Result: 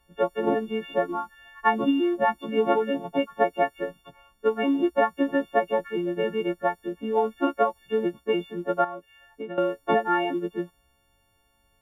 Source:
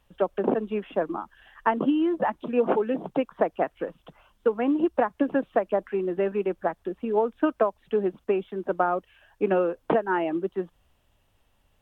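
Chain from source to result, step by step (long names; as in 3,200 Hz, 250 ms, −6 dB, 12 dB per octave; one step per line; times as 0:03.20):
every partial snapped to a pitch grid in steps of 4 semitones
0:08.84–0:09.58: downward compressor 6 to 1, threshold −33 dBFS, peak gain reduction 14 dB
one half of a high-frequency compander decoder only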